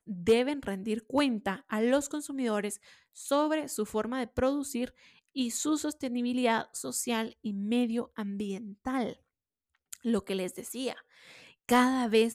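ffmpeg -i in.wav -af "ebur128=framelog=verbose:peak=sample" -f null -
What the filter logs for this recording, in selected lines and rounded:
Integrated loudness:
  I:         -30.9 LUFS
  Threshold: -41.3 LUFS
Loudness range:
  LRA:         4.4 LU
  Threshold: -52.3 LUFS
  LRA low:   -35.4 LUFS
  LRA high:  -31.0 LUFS
Sample peak:
  Peak:      -14.4 dBFS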